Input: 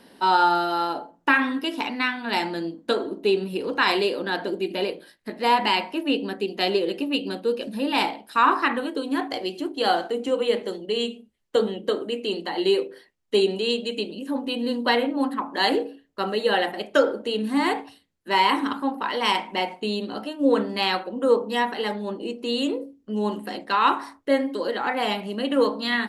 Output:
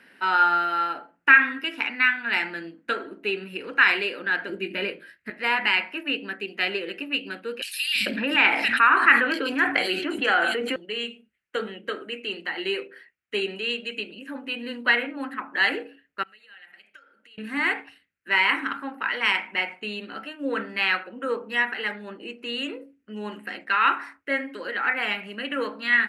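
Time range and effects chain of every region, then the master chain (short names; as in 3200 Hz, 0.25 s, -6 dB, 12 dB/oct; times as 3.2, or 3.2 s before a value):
4.49–5.3 low shelf 310 Hz +9 dB + notch 780 Hz, Q 8.5 + doubler 20 ms -12 dB
7.62–10.76 three bands offset in time highs, lows, mids 0.33/0.44 s, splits 170/3900 Hz + fast leveller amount 70%
16.23–17.38 compressor 8:1, threshold -34 dBFS + passive tone stack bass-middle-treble 5-5-5
whole clip: HPF 53 Hz; band shelf 1900 Hz +15.5 dB 1.3 oct; gain -9 dB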